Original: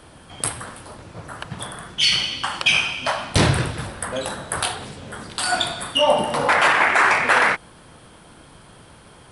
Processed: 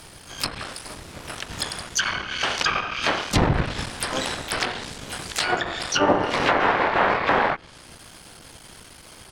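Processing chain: cycle switcher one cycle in 3, muted; harmoniser -12 st -2 dB, +7 st -11 dB, +12 st -6 dB; high shelf 2400 Hz +11.5 dB; treble ducked by the level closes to 1200 Hz, closed at -9.5 dBFS; gain -3 dB

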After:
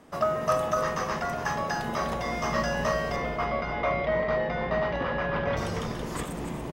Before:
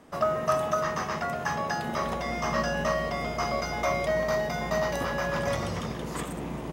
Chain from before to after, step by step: 3.16–5.57 LPF 3400 Hz 24 dB/oct; frequency-shifting echo 0.287 s, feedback 31%, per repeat -110 Hz, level -10 dB

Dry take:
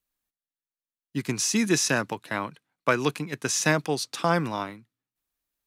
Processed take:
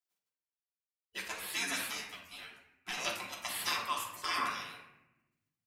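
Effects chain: spectral gate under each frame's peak -20 dB weak; 3.67–4.5 bell 1100 Hz +15 dB 0.37 oct; reverb RT60 0.95 s, pre-delay 3 ms, DRR -2 dB; 1.28–2.98 ensemble effect

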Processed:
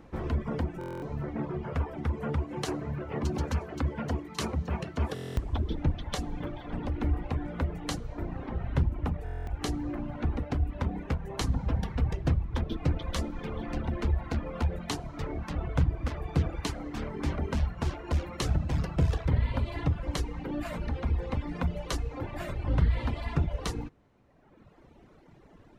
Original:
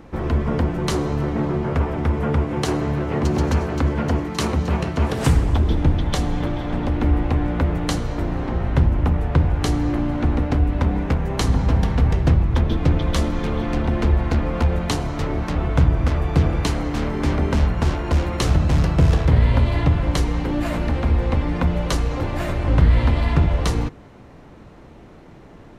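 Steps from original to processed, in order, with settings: reverb removal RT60 1.6 s; stuck buffer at 0.79/5.14/9.24, samples 1024, times 9; gain -8.5 dB

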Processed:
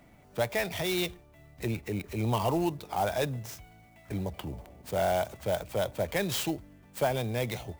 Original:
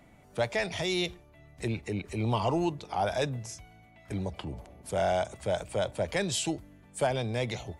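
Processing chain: clock jitter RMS 0.026 ms

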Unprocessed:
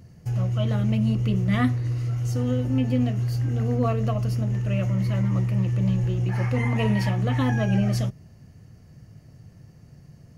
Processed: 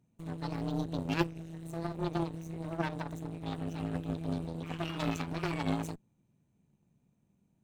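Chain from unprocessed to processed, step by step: added harmonics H 3 -10 dB, 5 -41 dB, 6 -28 dB, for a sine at -11 dBFS; wide varispeed 1.36×; gain -3.5 dB

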